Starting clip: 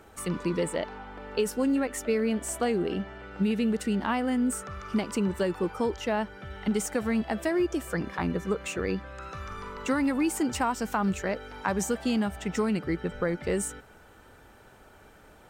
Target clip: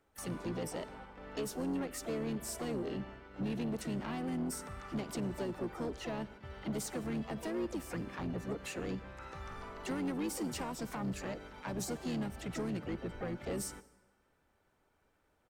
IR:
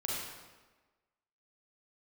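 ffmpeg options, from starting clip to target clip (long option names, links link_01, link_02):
-filter_complex "[0:a]agate=range=-14dB:threshold=-42dB:ratio=16:detection=peak,acrossover=split=490|3000[link_01][link_02][link_03];[link_02]acompressor=threshold=-37dB:ratio=2[link_04];[link_01][link_04][link_03]amix=inputs=3:normalize=0,asplit=4[link_05][link_06][link_07][link_08];[link_06]asetrate=29433,aresample=44100,atempo=1.49831,volume=-6dB[link_09];[link_07]asetrate=52444,aresample=44100,atempo=0.840896,volume=-16dB[link_10];[link_08]asetrate=66075,aresample=44100,atempo=0.66742,volume=-10dB[link_11];[link_05][link_09][link_10][link_11]amix=inputs=4:normalize=0,asoftclip=type=tanh:threshold=-23dB,asplit=2[link_12][link_13];[1:a]atrim=start_sample=2205,adelay=51[link_14];[link_13][link_14]afir=irnorm=-1:irlink=0,volume=-23dB[link_15];[link_12][link_15]amix=inputs=2:normalize=0,volume=-8dB"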